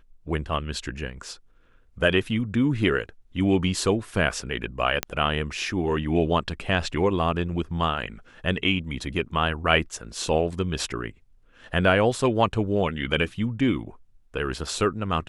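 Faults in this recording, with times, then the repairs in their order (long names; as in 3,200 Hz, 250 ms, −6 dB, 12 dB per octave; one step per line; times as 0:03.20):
0:05.03: click −7 dBFS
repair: click removal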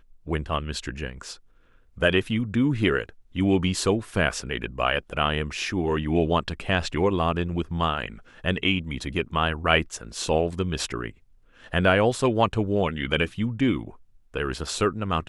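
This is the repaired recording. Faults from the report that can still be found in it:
none of them is left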